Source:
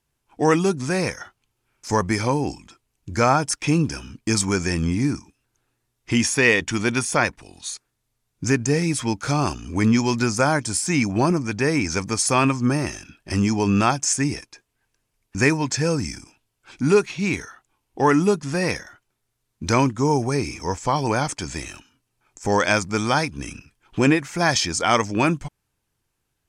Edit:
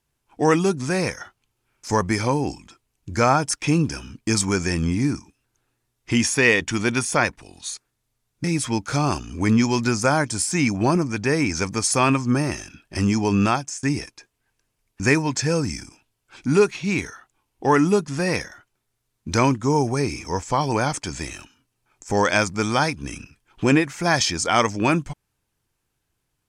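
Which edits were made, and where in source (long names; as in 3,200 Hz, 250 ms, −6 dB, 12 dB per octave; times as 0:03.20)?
0:08.44–0:08.79: remove
0:13.79–0:14.18: fade out, to −22 dB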